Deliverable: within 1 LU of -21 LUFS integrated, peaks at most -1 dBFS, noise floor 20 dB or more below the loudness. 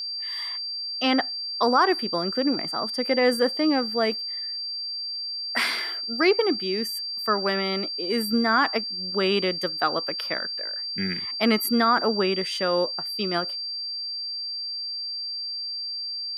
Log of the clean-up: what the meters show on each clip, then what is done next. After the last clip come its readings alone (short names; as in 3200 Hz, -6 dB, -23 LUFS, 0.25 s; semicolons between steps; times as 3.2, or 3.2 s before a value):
steady tone 4700 Hz; tone level -29 dBFS; loudness -24.5 LUFS; peak -9.0 dBFS; loudness target -21.0 LUFS
-> notch 4700 Hz, Q 30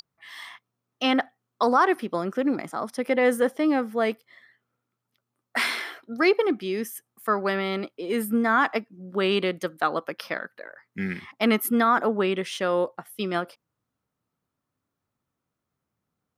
steady tone none; loudness -25.5 LUFS; peak -10.0 dBFS; loudness target -21.0 LUFS
-> gain +4.5 dB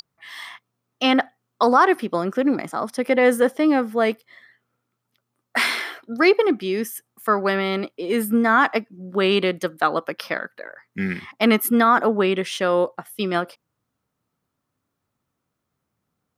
loudness -21.0 LUFS; peak -5.5 dBFS; noise floor -79 dBFS